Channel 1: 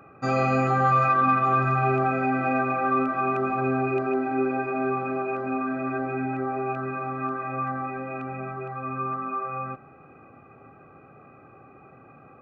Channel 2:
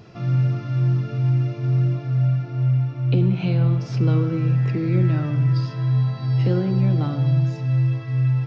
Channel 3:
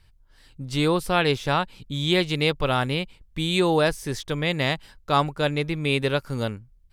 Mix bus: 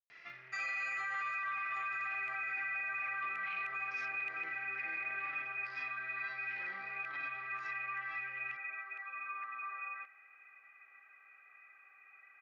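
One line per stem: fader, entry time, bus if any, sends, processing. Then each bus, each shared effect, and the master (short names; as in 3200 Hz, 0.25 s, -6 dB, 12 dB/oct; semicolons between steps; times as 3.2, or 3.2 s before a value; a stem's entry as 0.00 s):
-8.5 dB, 0.30 s, no bus, no send, high shelf 5500 Hz +6.5 dB
-3.0 dB, 0.10 s, bus A, no send, soft clip -22 dBFS, distortion -11 dB
off
bus A: 0.0 dB, tilt -4 dB/oct; limiter -18.5 dBFS, peak gain reduction 9 dB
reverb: off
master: resonant high-pass 2000 Hz, resonance Q 7.1; limiter -30.5 dBFS, peak gain reduction 11 dB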